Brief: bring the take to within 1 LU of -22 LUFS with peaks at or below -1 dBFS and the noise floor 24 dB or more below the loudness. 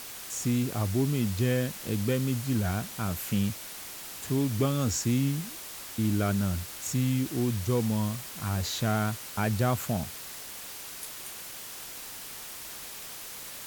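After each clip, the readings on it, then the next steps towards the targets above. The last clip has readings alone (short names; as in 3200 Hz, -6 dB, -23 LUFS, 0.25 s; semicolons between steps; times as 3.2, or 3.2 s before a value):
noise floor -42 dBFS; noise floor target -55 dBFS; loudness -30.5 LUFS; peak -13.5 dBFS; loudness target -22.0 LUFS
-> denoiser 13 dB, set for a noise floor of -42 dBFS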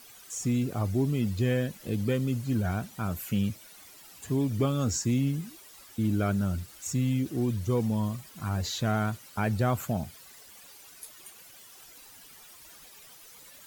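noise floor -52 dBFS; noise floor target -54 dBFS
-> denoiser 6 dB, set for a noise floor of -52 dBFS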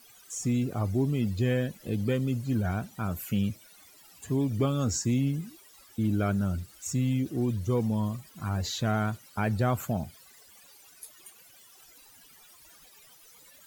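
noise floor -56 dBFS; loudness -29.5 LUFS; peak -14.0 dBFS; loudness target -22.0 LUFS
-> gain +7.5 dB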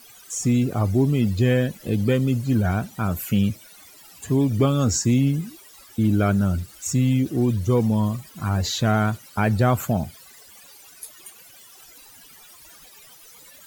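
loudness -22.0 LUFS; peak -6.5 dBFS; noise floor -48 dBFS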